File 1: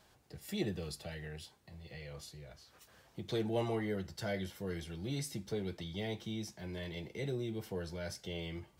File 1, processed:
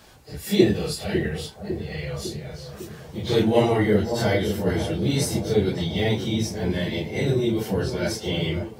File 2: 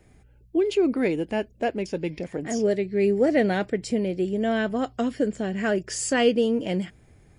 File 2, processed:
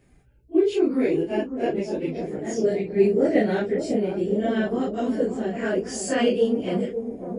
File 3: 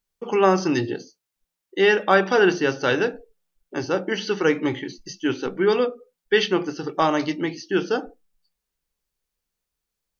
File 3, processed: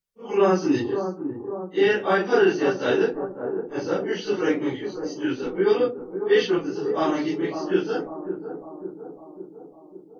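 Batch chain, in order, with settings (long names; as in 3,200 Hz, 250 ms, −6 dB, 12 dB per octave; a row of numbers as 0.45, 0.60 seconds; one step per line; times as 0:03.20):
random phases in long frames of 100 ms
dynamic equaliser 350 Hz, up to +5 dB, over −34 dBFS, Q 1.1
on a send: bucket-brigade delay 552 ms, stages 4,096, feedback 59%, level −8.5 dB
on the sum: loudness normalisation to −24 LKFS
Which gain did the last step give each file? +15.5, −3.0, −5.0 decibels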